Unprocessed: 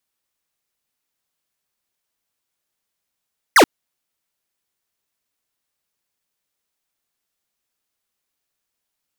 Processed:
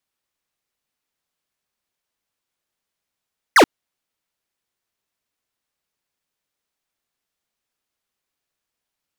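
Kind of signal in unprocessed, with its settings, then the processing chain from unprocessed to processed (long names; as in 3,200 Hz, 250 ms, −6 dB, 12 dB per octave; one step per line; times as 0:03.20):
single falling chirp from 2,200 Hz, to 240 Hz, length 0.08 s square, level −9 dB
high-shelf EQ 6,500 Hz −6.5 dB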